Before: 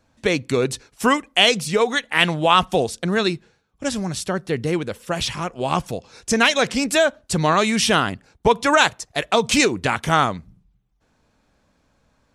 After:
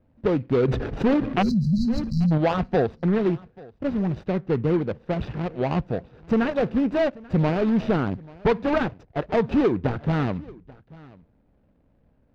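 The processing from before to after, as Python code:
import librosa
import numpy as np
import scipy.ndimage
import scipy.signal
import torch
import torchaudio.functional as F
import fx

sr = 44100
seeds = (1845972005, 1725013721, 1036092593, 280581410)

p1 = scipy.ndimage.median_filter(x, 41, mode='constant')
p2 = fx.spec_erase(p1, sr, start_s=1.42, length_s=0.9, low_hz=250.0, high_hz=3900.0)
p3 = fx.fold_sine(p2, sr, drive_db=7, ceiling_db=-7.5)
p4 = p2 + (p3 * librosa.db_to_amplitude(-6.0))
p5 = fx.air_absorb(p4, sr, metres=240.0)
p6 = p5 + 10.0 ** (-22.5 / 20.0) * np.pad(p5, (int(836 * sr / 1000.0), 0))[:len(p5)]
p7 = fx.env_flatten(p6, sr, amount_pct=70, at=(0.68, 2.38))
y = p7 * librosa.db_to_amplitude(-6.0)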